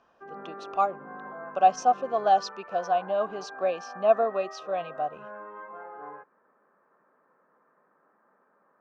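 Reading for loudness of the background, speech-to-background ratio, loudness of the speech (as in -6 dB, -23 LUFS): -42.0 LUFS, 15.0 dB, -27.0 LUFS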